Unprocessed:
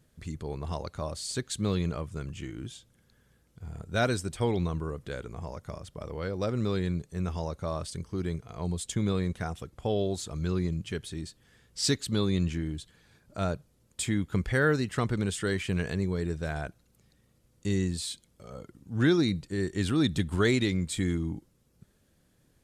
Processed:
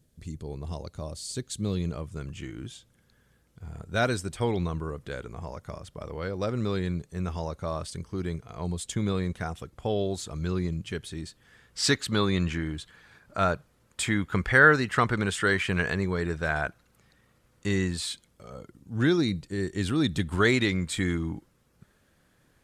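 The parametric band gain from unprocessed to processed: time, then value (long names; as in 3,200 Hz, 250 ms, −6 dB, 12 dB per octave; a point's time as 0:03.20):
parametric band 1,400 Hz 2.2 octaves
0:01.70 −8 dB
0:02.37 +2.5 dB
0:11.06 +2.5 dB
0:11.89 +11.5 dB
0:18.02 +11.5 dB
0:18.59 +1 dB
0:20.01 +1 dB
0:20.65 +9 dB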